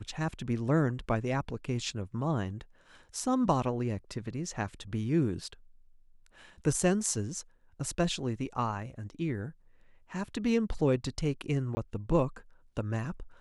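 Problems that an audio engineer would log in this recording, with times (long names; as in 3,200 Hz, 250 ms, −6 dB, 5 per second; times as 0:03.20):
0:11.75–0:11.77: drop-out 20 ms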